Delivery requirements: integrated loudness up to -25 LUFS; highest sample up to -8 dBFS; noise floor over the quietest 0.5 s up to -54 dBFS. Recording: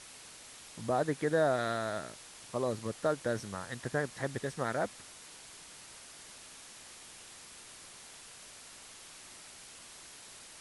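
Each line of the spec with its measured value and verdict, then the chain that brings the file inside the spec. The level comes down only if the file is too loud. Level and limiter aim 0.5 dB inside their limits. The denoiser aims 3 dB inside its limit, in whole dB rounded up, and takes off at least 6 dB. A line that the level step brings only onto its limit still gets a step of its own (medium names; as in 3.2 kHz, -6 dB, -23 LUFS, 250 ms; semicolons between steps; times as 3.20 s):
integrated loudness -34.0 LUFS: pass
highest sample -17.0 dBFS: pass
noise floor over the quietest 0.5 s -52 dBFS: fail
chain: noise reduction 6 dB, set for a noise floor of -52 dBFS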